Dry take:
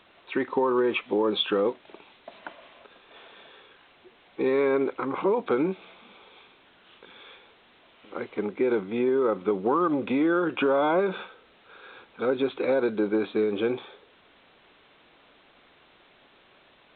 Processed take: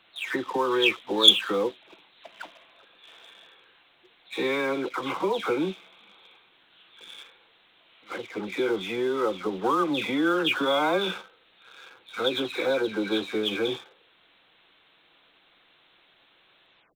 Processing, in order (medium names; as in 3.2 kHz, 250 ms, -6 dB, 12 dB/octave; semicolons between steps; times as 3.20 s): delay that grows with frequency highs early, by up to 289 ms; dynamic bell 3.5 kHz, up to +7 dB, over -54 dBFS, Q 1.8; waveshaping leveller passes 1; treble shelf 2.1 kHz +12 dB; trim -5.5 dB